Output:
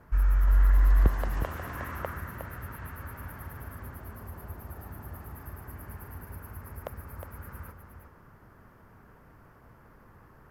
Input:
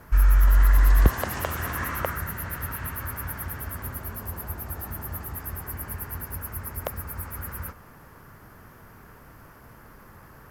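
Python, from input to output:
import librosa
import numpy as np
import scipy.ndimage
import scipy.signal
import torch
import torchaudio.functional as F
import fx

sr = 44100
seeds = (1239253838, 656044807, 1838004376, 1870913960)

p1 = fx.high_shelf(x, sr, hz=2800.0, db=-11.0)
p2 = p1 + fx.echo_single(p1, sr, ms=361, db=-8.0, dry=0)
y = p2 * 10.0 ** (-6.0 / 20.0)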